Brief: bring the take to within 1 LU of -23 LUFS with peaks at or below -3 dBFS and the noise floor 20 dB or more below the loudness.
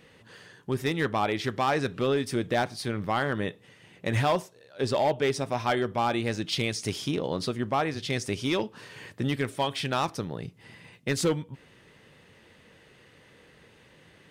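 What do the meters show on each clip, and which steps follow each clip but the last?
clipped samples 0.7%; clipping level -18.5 dBFS; loudness -29.0 LUFS; peak level -18.5 dBFS; loudness target -23.0 LUFS
-> clip repair -18.5 dBFS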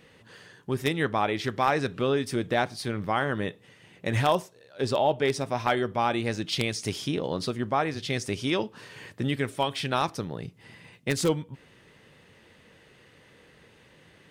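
clipped samples 0.0%; loudness -28.0 LUFS; peak level -9.5 dBFS; loudness target -23.0 LUFS
-> trim +5 dB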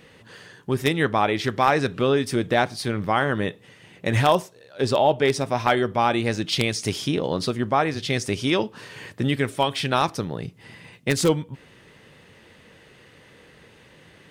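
loudness -23.0 LUFS; peak level -4.5 dBFS; noise floor -52 dBFS

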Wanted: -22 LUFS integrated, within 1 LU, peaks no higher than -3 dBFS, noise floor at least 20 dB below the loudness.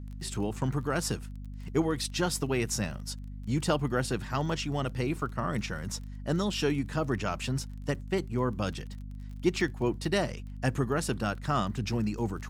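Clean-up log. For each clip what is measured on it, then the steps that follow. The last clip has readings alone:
tick rate 23 per s; hum 50 Hz; highest harmonic 250 Hz; hum level -38 dBFS; loudness -31.5 LUFS; peak level -13.0 dBFS; loudness target -22.0 LUFS
-> de-click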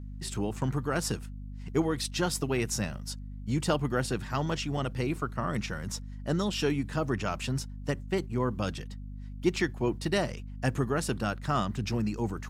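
tick rate 0.080 per s; hum 50 Hz; highest harmonic 250 Hz; hum level -38 dBFS
-> de-hum 50 Hz, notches 5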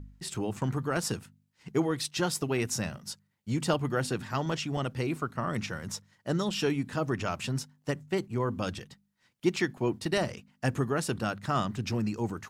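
hum not found; loudness -31.5 LUFS; peak level -13.5 dBFS; loudness target -22.0 LUFS
-> trim +9.5 dB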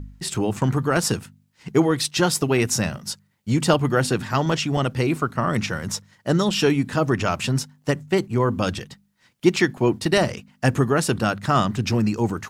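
loudness -22.0 LUFS; peak level -4.0 dBFS; noise floor -64 dBFS

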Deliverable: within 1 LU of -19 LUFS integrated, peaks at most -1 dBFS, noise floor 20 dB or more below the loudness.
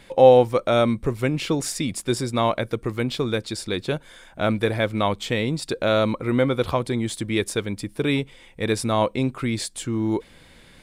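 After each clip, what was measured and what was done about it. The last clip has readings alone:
loudness -23.0 LUFS; peak level -2.0 dBFS; loudness target -19.0 LUFS
-> trim +4 dB; peak limiter -1 dBFS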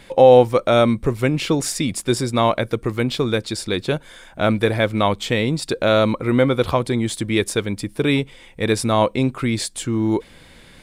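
loudness -19.5 LUFS; peak level -1.0 dBFS; noise floor -47 dBFS

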